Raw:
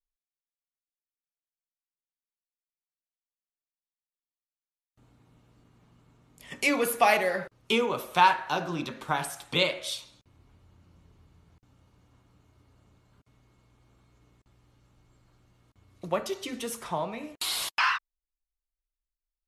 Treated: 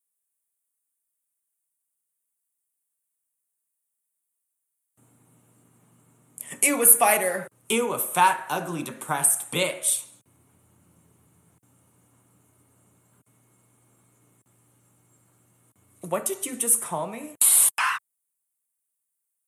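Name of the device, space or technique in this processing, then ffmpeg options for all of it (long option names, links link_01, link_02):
budget condenser microphone: -af "highpass=frequency=110:width=0.5412,highpass=frequency=110:width=1.3066,highshelf=frequency=6700:width_type=q:width=3:gain=13,volume=1.5dB"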